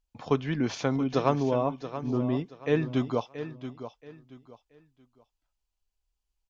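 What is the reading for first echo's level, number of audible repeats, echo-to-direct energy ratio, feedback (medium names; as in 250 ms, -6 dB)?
-11.5 dB, 3, -11.0 dB, 28%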